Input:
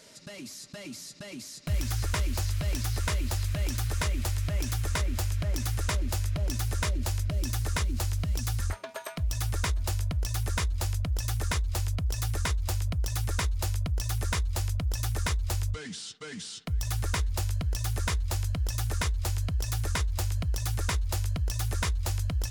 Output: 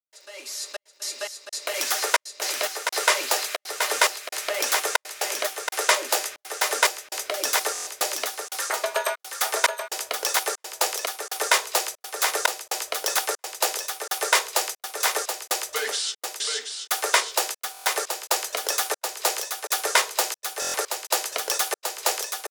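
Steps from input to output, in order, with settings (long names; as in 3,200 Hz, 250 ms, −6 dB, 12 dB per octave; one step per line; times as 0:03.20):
automatic gain control gain up to 13.5 dB
on a send at −6.5 dB: convolution reverb RT60 0.35 s, pre-delay 3 ms
on the sum: surface crackle 380 per second −43 dBFS
elliptic high-pass filter 420 Hz, stop band 60 dB
gate pattern ".xxxxx..xx." 118 BPM −60 dB
single-tap delay 727 ms −6.5 dB
buffer that repeats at 0:07.73/0:17.72/0:20.60, samples 1,024, times 5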